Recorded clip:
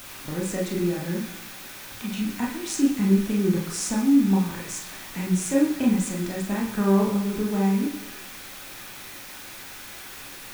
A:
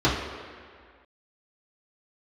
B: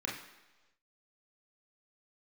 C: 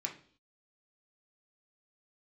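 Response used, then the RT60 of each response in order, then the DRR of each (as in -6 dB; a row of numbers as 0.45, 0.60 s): B; 1.9, 1.2, 0.50 s; -9.0, -3.0, 0.0 dB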